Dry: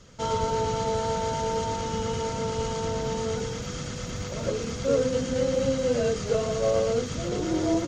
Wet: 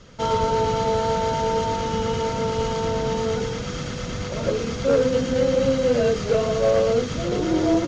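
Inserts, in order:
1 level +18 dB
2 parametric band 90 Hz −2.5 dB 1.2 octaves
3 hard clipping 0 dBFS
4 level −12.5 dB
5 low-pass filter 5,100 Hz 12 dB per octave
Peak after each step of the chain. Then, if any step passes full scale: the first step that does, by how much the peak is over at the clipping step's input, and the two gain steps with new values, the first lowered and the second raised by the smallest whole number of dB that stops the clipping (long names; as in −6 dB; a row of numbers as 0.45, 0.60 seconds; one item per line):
+6.0, +5.5, 0.0, −12.5, −12.5 dBFS
step 1, 5.5 dB
step 1 +12 dB, step 4 −6.5 dB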